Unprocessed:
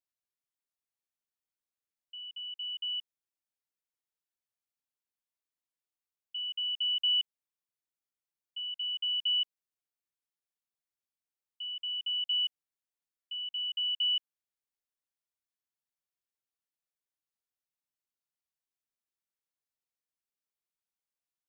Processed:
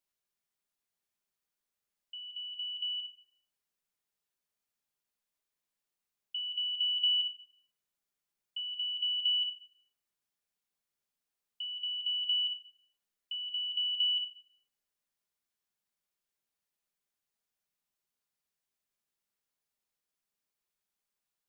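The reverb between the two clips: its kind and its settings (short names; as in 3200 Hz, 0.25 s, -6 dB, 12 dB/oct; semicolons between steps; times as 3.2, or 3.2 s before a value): shoebox room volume 2600 m³, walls furnished, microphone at 1.3 m; gain +4 dB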